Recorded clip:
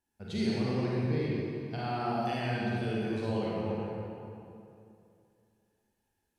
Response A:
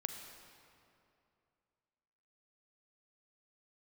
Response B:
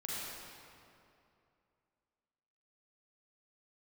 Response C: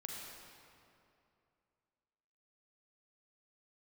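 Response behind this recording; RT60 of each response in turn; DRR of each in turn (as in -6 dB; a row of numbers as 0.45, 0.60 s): B; 2.6, 2.6, 2.6 s; 5.0, -7.0, -2.0 dB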